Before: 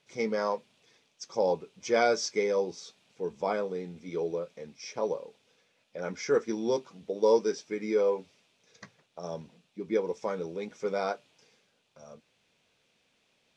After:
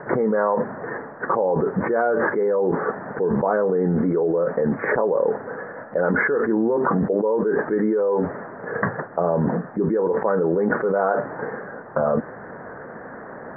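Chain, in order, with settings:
Butterworth low-pass 1,800 Hz 96 dB per octave
low-shelf EQ 120 Hz −11.5 dB
envelope flattener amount 100%

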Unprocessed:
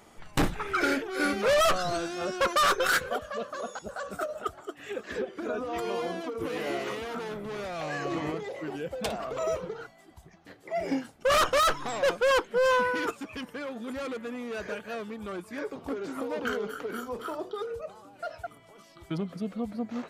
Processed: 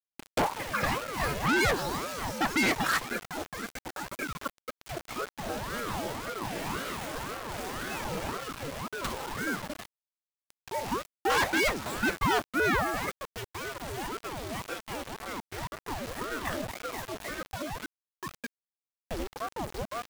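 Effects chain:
0:10.74–0:12.60: frequency shifter +67 Hz
bit-depth reduction 6 bits, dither none
ring modulator whose carrier an LFO sweeps 550 Hz, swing 75%, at 1.9 Hz

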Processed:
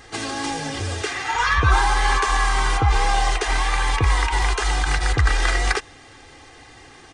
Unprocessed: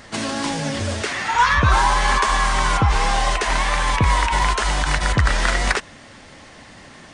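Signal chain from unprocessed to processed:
comb filter 2.5 ms, depth 82%
level −4 dB

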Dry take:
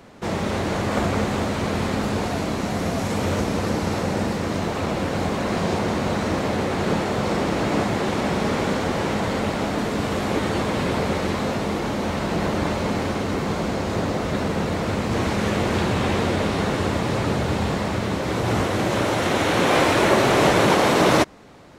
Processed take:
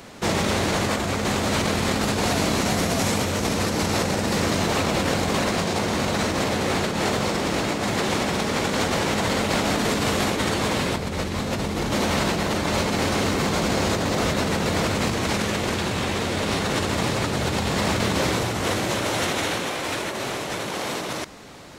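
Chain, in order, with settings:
0:10.95–0:11.92: low-shelf EQ 190 Hz +9.5 dB
compressor whose output falls as the input rises −25 dBFS, ratio −1
high-shelf EQ 2,400 Hz +9.5 dB

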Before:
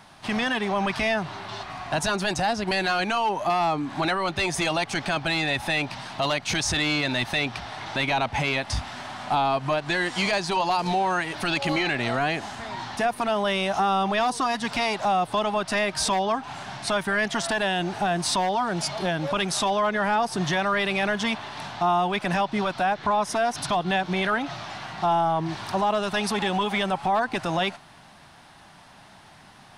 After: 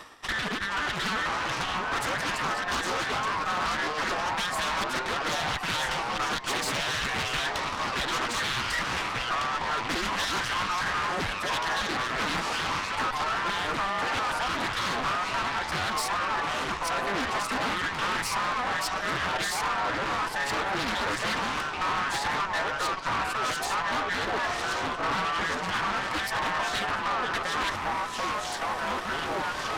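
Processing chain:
frequency inversion band by band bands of 2,000 Hz
in parallel at +1 dB: brickwall limiter −20 dBFS, peak gain reduction 7.5 dB
on the sum: transient designer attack +10 dB, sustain −3 dB
reversed playback
downward compressor 5 to 1, threshold −33 dBFS, peak gain reduction 22 dB
reversed playback
delay with pitch and tempo change per echo 425 ms, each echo −3 semitones, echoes 3
tube saturation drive 32 dB, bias 0.75
highs frequency-modulated by the lows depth 0.6 ms
level +8 dB

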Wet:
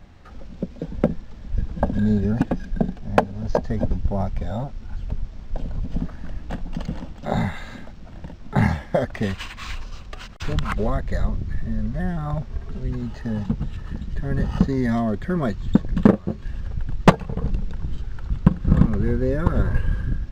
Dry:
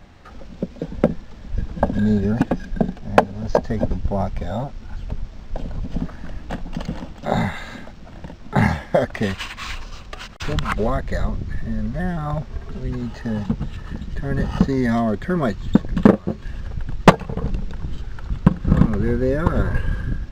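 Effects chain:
low-shelf EQ 200 Hz +5.5 dB
level −4.5 dB

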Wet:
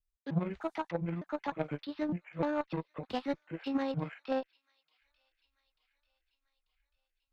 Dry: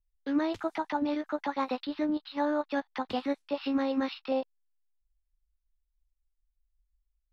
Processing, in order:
pitch shifter gated in a rhythm −9.5 semitones, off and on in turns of 303 ms
delay with a high-pass on its return 890 ms, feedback 56%, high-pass 2,500 Hz, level −20.5 dB
harmonic generator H 3 −15 dB, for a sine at −18 dBFS

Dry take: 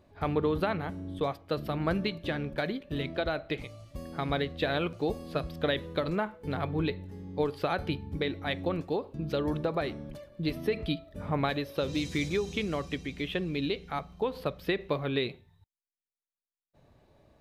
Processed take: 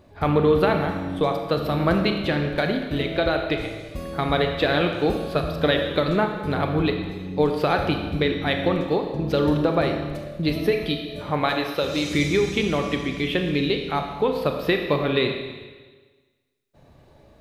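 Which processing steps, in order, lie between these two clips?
0:10.71–0:12.11: low-shelf EQ 280 Hz −8.5 dB
four-comb reverb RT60 1.4 s, combs from 27 ms, DRR 4 dB
level +8 dB

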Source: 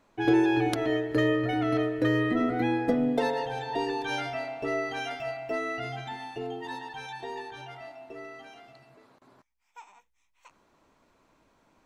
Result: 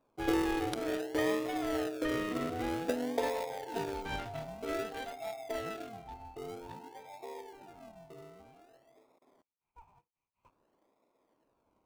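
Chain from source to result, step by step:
adaptive Wiener filter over 25 samples
high-pass filter 420 Hz 12 dB per octave
in parallel at −4 dB: sample-and-hold swept by an LFO 42×, swing 60% 0.52 Hz
on the sum: level −5 dB

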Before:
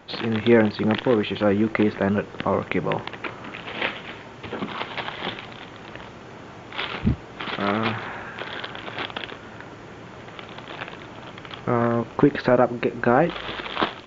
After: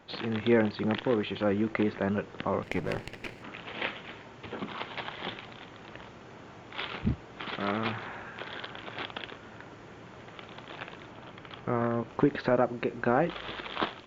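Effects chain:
0:02.63–0:03.43: lower of the sound and its delayed copy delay 0.4 ms
0:11.11–0:12.09: high-shelf EQ 4,200 Hz −5 dB
level −7.5 dB

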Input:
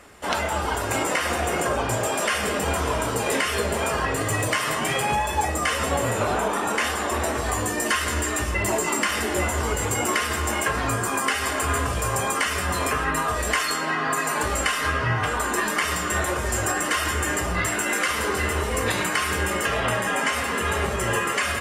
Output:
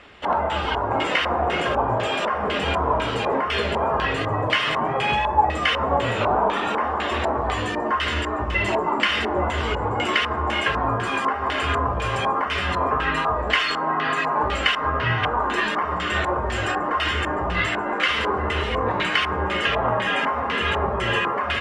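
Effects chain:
auto-filter low-pass square 2 Hz 970–3,200 Hz

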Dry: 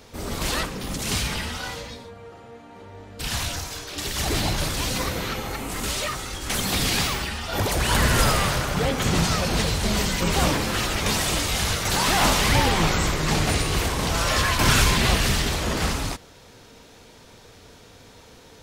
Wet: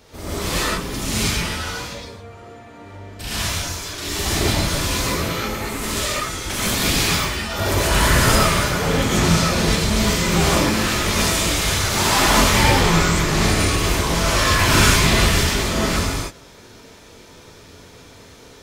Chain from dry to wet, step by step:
reverb whose tail is shaped and stops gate 160 ms rising, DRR −7 dB
level −3 dB

